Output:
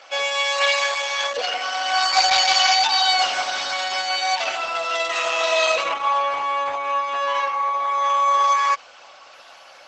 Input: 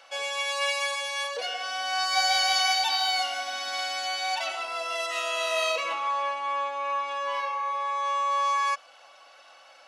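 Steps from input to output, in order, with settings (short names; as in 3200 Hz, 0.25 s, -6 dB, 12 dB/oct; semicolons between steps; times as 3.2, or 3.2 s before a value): 2.79–3.39 low shelf 64 Hz -3.5 dB; gain +8.5 dB; Opus 12 kbps 48000 Hz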